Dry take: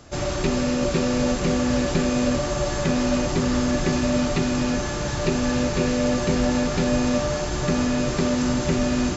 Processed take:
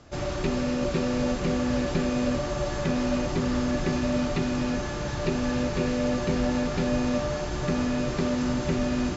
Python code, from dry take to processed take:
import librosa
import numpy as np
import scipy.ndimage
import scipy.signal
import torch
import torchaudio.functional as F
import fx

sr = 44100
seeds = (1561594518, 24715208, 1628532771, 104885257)

y = fx.air_absorb(x, sr, metres=74.0)
y = F.gain(torch.from_numpy(y), -4.0).numpy()